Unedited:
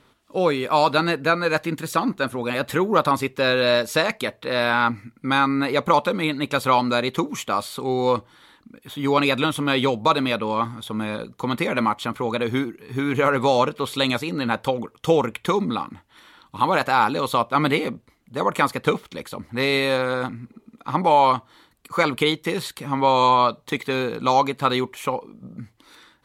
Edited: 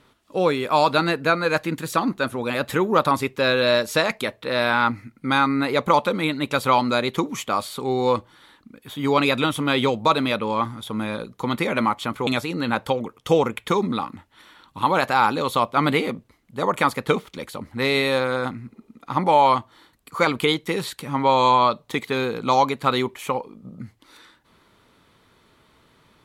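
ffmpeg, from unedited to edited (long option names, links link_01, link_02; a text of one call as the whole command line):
ffmpeg -i in.wav -filter_complex "[0:a]asplit=2[link_01][link_02];[link_01]atrim=end=12.272[link_03];[link_02]atrim=start=14.048[link_04];[link_03][link_04]acrossfade=duration=0.004:curve1=hsin:curve2=hsin" out.wav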